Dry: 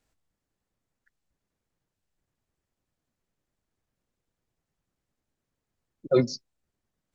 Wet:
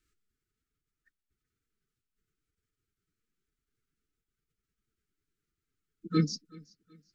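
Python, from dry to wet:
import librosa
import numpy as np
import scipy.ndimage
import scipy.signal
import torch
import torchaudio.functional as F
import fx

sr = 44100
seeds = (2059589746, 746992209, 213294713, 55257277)

y = scipy.signal.sosfilt(scipy.signal.cheby1(4, 1.0, [360.0, 990.0], 'bandstop', fs=sr, output='sos'), x)
y = fx.echo_feedback(y, sr, ms=377, feedback_pct=36, wet_db=-24)
y = fx.pitch_keep_formants(y, sr, semitones=4.0)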